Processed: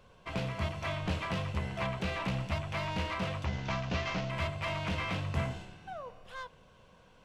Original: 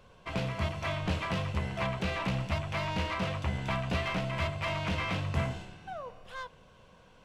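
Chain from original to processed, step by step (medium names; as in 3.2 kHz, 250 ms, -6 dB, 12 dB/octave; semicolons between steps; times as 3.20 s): 3.45–4.30 s: CVSD coder 32 kbps; trim -2 dB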